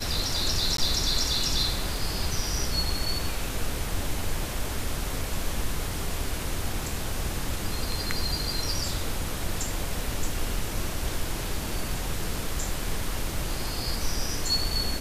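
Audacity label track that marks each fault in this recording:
0.770000	0.780000	dropout 13 ms

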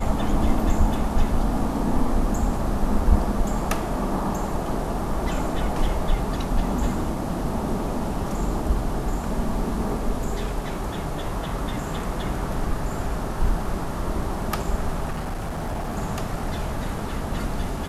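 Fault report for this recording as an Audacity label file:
15.100000	15.980000	clipped -24.5 dBFS

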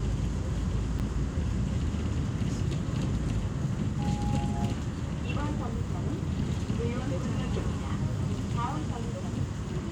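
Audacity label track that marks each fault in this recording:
0.990000	1.000000	dropout 8.1 ms

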